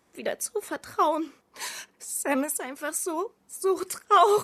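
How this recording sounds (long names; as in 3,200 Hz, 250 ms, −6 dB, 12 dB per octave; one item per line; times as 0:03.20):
background noise floor −67 dBFS
spectral slope −3.0 dB per octave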